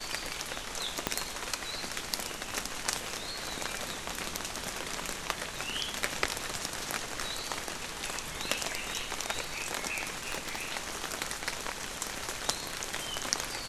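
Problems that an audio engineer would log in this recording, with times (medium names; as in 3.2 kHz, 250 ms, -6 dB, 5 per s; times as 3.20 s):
1.07 s: pop -10 dBFS
10.18–10.65 s: clipped -26.5 dBFS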